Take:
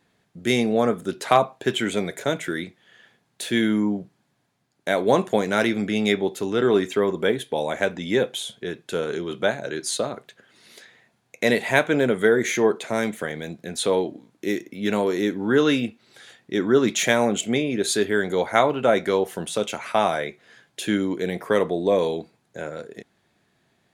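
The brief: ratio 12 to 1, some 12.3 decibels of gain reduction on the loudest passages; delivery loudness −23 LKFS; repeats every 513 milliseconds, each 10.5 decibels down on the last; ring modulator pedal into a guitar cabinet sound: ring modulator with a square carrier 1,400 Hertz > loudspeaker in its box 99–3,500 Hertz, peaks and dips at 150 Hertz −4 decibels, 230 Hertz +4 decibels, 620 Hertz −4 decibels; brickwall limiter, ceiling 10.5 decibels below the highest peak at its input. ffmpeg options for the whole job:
ffmpeg -i in.wav -af "acompressor=threshold=-25dB:ratio=12,alimiter=limit=-20dB:level=0:latency=1,aecho=1:1:513|1026|1539:0.299|0.0896|0.0269,aeval=exprs='val(0)*sgn(sin(2*PI*1400*n/s))':channel_layout=same,highpass=99,equalizer=frequency=150:width_type=q:width=4:gain=-4,equalizer=frequency=230:width_type=q:width=4:gain=4,equalizer=frequency=620:width_type=q:width=4:gain=-4,lowpass=frequency=3500:width=0.5412,lowpass=frequency=3500:width=1.3066,volume=9dB" out.wav

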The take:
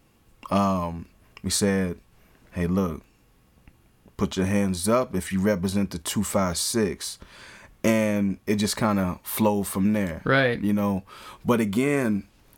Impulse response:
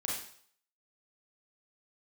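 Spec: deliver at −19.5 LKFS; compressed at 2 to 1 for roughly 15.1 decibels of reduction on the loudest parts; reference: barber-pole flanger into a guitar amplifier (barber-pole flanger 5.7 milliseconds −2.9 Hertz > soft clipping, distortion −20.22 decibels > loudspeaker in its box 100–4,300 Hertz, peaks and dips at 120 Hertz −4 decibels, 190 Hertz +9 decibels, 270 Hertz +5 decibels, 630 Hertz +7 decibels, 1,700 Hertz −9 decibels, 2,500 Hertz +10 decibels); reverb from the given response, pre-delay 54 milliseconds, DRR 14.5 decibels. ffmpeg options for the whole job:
-filter_complex "[0:a]acompressor=threshold=-46dB:ratio=2,asplit=2[link_01][link_02];[1:a]atrim=start_sample=2205,adelay=54[link_03];[link_02][link_03]afir=irnorm=-1:irlink=0,volume=-18dB[link_04];[link_01][link_04]amix=inputs=2:normalize=0,asplit=2[link_05][link_06];[link_06]adelay=5.7,afreqshift=-2.9[link_07];[link_05][link_07]amix=inputs=2:normalize=1,asoftclip=threshold=-30.5dB,highpass=100,equalizer=frequency=120:width_type=q:width=4:gain=-4,equalizer=frequency=190:width_type=q:width=4:gain=9,equalizer=frequency=270:width_type=q:width=4:gain=5,equalizer=frequency=630:width_type=q:width=4:gain=7,equalizer=frequency=1700:width_type=q:width=4:gain=-9,equalizer=frequency=2500:width_type=q:width=4:gain=10,lowpass=frequency=4300:width=0.5412,lowpass=frequency=4300:width=1.3066,volume=18.5dB"

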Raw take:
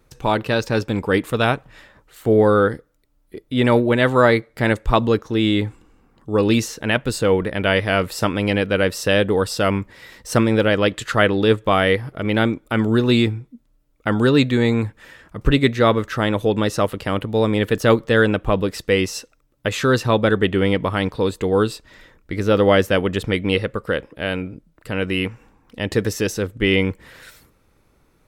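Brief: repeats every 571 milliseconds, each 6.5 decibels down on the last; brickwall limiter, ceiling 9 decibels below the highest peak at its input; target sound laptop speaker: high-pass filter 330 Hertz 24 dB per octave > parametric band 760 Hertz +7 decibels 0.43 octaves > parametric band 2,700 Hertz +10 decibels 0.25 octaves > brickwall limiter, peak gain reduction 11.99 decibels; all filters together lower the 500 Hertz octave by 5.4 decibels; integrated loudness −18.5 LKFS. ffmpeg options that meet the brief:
ffmpeg -i in.wav -af "equalizer=frequency=500:width_type=o:gain=-7.5,alimiter=limit=-12dB:level=0:latency=1,highpass=frequency=330:width=0.5412,highpass=frequency=330:width=1.3066,equalizer=frequency=760:width_type=o:width=0.43:gain=7,equalizer=frequency=2700:width_type=o:width=0.25:gain=10,aecho=1:1:571|1142|1713|2284|2855|3426:0.473|0.222|0.105|0.0491|0.0231|0.0109,volume=9.5dB,alimiter=limit=-7dB:level=0:latency=1" out.wav

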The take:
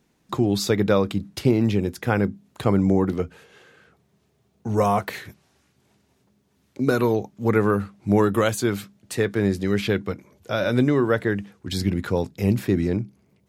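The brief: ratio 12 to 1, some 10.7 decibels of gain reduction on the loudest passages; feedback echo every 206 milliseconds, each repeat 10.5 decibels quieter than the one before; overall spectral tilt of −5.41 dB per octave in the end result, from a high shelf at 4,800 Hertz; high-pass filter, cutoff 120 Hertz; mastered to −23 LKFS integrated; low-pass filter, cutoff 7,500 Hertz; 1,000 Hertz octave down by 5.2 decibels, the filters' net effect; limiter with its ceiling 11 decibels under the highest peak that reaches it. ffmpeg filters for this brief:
ffmpeg -i in.wav -af "highpass=120,lowpass=7500,equalizer=frequency=1000:width_type=o:gain=-7,highshelf=frequency=4800:gain=-4.5,acompressor=threshold=-26dB:ratio=12,alimiter=level_in=3dB:limit=-24dB:level=0:latency=1,volume=-3dB,aecho=1:1:206|412|618:0.299|0.0896|0.0269,volume=14dB" out.wav

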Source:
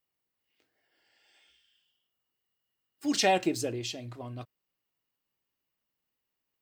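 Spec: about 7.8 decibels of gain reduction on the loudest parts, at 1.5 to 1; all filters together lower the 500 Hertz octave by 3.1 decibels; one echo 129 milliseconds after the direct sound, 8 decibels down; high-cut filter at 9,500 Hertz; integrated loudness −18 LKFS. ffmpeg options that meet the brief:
ffmpeg -i in.wav -af "lowpass=9500,equalizer=frequency=500:width_type=o:gain=-4,acompressor=threshold=-44dB:ratio=1.5,aecho=1:1:129:0.398,volume=20dB" out.wav

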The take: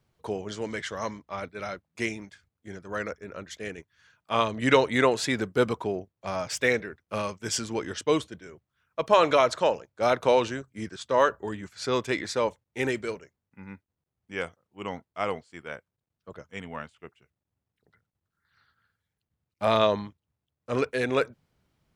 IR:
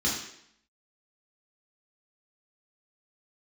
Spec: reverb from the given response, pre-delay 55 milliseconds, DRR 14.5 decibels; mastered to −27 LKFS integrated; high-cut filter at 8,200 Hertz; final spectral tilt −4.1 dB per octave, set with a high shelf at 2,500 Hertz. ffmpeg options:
-filter_complex "[0:a]lowpass=8200,highshelf=frequency=2500:gain=-6.5,asplit=2[link_01][link_02];[1:a]atrim=start_sample=2205,adelay=55[link_03];[link_02][link_03]afir=irnorm=-1:irlink=0,volume=-24dB[link_04];[link_01][link_04]amix=inputs=2:normalize=0,volume=1.5dB"

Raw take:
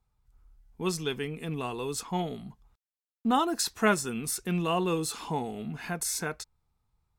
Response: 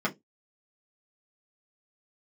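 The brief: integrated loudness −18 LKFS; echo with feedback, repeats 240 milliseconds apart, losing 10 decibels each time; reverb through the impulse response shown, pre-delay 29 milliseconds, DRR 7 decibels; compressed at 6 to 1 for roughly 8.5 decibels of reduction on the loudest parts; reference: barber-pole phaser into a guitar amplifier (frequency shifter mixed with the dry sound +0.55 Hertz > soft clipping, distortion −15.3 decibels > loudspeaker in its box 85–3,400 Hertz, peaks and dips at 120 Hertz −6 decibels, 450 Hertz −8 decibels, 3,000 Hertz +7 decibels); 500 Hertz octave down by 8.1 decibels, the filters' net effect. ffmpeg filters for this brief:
-filter_complex "[0:a]equalizer=frequency=500:width_type=o:gain=-7.5,acompressor=threshold=-31dB:ratio=6,aecho=1:1:240|480|720|960:0.316|0.101|0.0324|0.0104,asplit=2[link_01][link_02];[1:a]atrim=start_sample=2205,adelay=29[link_03];[link_02][link_03]afir=irnorm=-1:irlink=0,volume=-16.5dB[link_04];[link_01][link_04]amix=inputs=2:normalize=0,asplit=2[link_05][link_06];[link_06]afreqshift=0.55[link_07];[link_05][link_07]amix=inputs=2:normalize=1,asoftclip=threshold=-31dB,highpass=85,equalizer=frequency=120:width_type=q:width=4:gain=-6,equalizer=frequency=450:width_type=q:width=4:gain=-8,equalizer=frequency=3000:width_type=q:width=4:gain=7,lowpass=frequency=3400:width=0.5412,lowpass=frequency=3400:width=1.3066,volume=23.5dB"

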